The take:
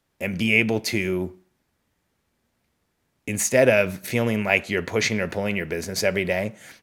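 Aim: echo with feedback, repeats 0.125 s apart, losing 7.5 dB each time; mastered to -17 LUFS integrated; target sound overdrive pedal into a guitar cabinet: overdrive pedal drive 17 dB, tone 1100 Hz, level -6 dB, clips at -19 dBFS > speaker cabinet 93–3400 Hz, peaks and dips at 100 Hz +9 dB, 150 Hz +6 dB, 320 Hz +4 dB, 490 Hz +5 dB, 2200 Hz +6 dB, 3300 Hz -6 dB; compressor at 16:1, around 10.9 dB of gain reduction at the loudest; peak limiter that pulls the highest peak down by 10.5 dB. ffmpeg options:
-filter_complex "[0:a]acompressor=threshold=-23dB:ratio=16,alimiter=limit=-22.5dB:level=0:latency=1,aecho=1:1:125|250|375|500|625:0.422|0.177|0.0744|0.0312|0.0131,asplit=2[a][b];[b]highpass=f=720:p=1,volume=17dB,asoftclip=type=tanh:threshold=-19dB[c];[a][c]amix=inputs=2:normalize=0,lowpass=f=1.1k:p=1,volume=-6dB,highpass=93,equalizer=f=100:t=q:w=4:g=9,equalizer=f=150:t=q:w=4:g=6,equalizer=f=320:t=q:w=4:g=4,equalizer=f=490:t=q:w=4:g=5,equalizer=f=2.2k:t=q:w=4:g=6,equalizer=f=3.3k:t=q:w=4:g=-6,lowpass=f=3.4k:w=0.5412,lowpass=f=3.4k:w=1.3066,volume=12dB"

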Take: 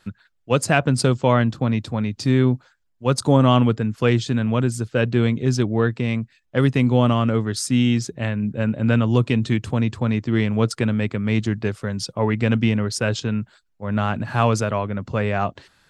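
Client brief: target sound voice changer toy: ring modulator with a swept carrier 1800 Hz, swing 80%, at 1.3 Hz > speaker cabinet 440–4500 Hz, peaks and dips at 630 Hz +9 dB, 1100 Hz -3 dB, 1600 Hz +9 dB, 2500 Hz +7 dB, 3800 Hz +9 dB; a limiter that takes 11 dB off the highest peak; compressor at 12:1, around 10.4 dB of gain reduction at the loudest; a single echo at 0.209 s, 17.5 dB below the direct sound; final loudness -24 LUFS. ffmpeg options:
-af "acompressor=threshold=-22dB:ratio=12,alimiter=limit=-21.5dB:level=0:latency=1,aecho=1:1:209:0.133,aeval=exprs='val(0)*sin(2*PI*1800*n/s+1800*0.8/1.3*sin(2*PI*1.3*n/s))':c=same,highpass=440,equalizer=f=630:t=q:w=4:g=9,equalizer=f=1.1k:t=q:w=4:g=-3,equalizer=f=1.6k:t=q:w=4:g=9,equalizer=f=2.5k:t=q:w=4:g=7,equalizer=f=3.8k:t=q:w=4:g=9,lowpass=f=4.5k:w=0.5412,lowpass=f=4.5k:w=1.3066,volume=3dB"

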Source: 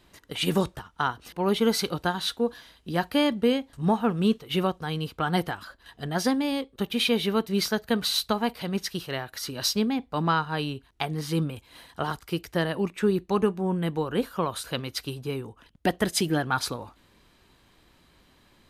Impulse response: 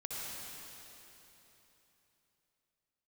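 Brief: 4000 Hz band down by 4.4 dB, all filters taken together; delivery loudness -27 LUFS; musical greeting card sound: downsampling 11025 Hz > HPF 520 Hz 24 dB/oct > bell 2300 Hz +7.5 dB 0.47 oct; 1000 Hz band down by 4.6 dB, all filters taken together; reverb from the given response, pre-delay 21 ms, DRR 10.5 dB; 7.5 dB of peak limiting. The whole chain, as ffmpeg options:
-filter_complex "[0:a]equalizer=f=1k:t=o:g=-6,equalizer=f=4k:t=o:g=-7,alimiter=limit=-20dB:level=0:latency=1,asplit=2[a][b];[1:a]atrim=start_sample=2205,adelay=21[c];[b][c]afir=irnorm=-1:irlink=0,volume=-12dB[d];[a][d]amix=inputs=2:normalize=0,aresample=11025,aresample=44100,highpass=f=520:w=0.5412,highpass=f=520:w=1.3066,equalizer=f=2.3k:t=o:w=0.47:g=7.5,volume=9dB"

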